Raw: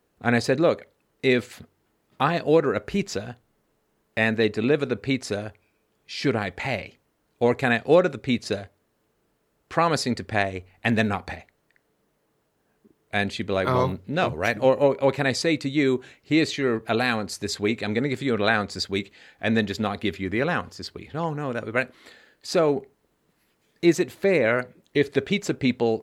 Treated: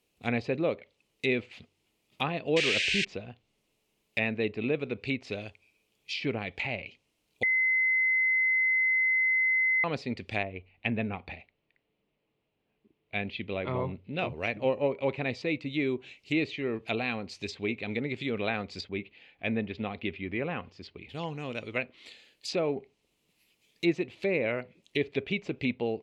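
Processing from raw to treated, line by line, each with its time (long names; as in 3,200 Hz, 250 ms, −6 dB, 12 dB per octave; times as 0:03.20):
0:02.56–0:03.05: sound drawn into the spectrogram noise 1,500–8,900 Hz −17 dBFS
0:07.43–0:09.84: beep over 2,050 Hz −14.5 dBFS
0:10.43–0:14.19: high-frequency loss of the air 360 metres
0:18.89–0:21.09: low-pass filter 2,100 Hz
whole clip: high shelf with overshoot 2,000 Hz +7.5 dB, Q 3; treble cut that deepens with the level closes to 1,700 Hz, closed at −18.5 dBFS; level −8 dB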